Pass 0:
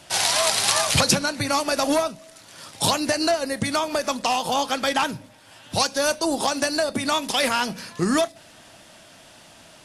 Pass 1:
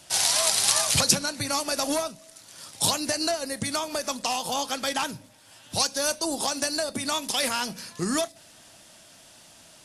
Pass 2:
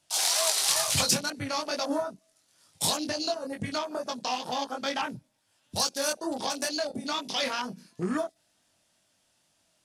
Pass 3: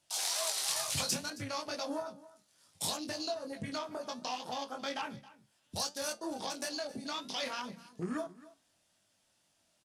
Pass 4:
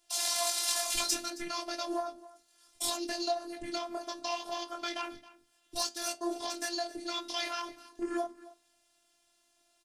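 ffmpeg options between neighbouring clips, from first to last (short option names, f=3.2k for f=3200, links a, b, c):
-af "bass=f=250:g=1,treble=f=4k:g=8,volume=-6.5dB"
-af "aeval=exprs='0.631*sin(PI/2*1.41*val(0)/0.631)':c=same,flanger=delay=20:depth=3.7:speed=2.2,afwtdn=0.0316,volume=-6dB"
-filter_complex "[0:a]asplit=2[a][b];[b]acompressor=threshold=-37dB:ratio=6,volume=1dB[c];[a][c]amix=inputs=2:normalize=0,flanger=delay=9:depth=5.9:regen=75:speed=0.65:shape=sinusoidal,aecho=1:1:270:0.112,volume=-6dB"
-af "afftfilt=real='hypot(re,im)*cos(PI*b)':imag='0':win_size=512:overlap=0.75,volume=6dB"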